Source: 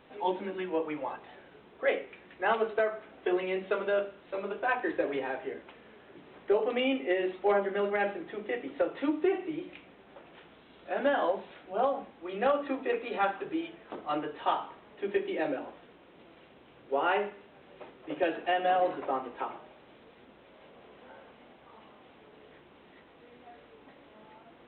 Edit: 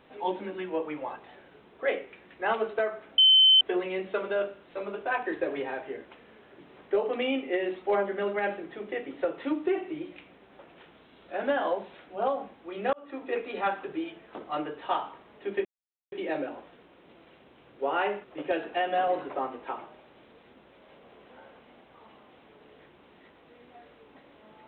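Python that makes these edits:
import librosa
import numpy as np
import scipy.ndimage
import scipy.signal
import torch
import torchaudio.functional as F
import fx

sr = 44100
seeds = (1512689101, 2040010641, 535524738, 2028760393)

y = fx.edit(x, sr, fx.insert_tone(at_s=3.18, length_s=0.43, hz=3070.0, db=-14.5),
    fx.fade_in_span(start_s=12.5, length_s=0.43),
    fx.insert_silence(at_s=15.22, length_s=0.47),
    fx.cut(start_s=17.34, length_s=0.62), tone=tone)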